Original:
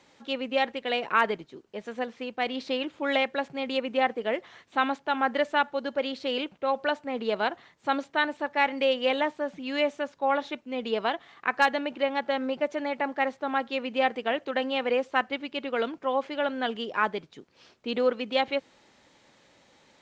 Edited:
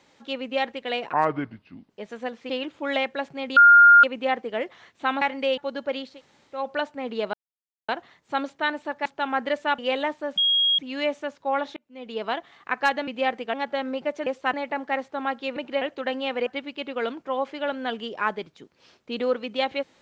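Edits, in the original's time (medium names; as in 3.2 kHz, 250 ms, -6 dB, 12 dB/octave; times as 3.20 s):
1.13–1.65 s: speed 68%
2.25–2.69 s: delete
3.76 s: add tone 1.41 kHz -8.5 dBFS 0.47 s
4.94–5.67 s: swap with 8.60–8.96 s
6.19–6.66 s: room tone, crossfade 0.24 s
7.43 s: insert silence 0.55 s
9.55 s: add tone 3.28 kHz -17.5 dBFS 0.41 s
10.53–11.10 s: fade in
11.84–12.09 s: swap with 13.85–14.31 s
14.96–15.23 s: move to 12.82 s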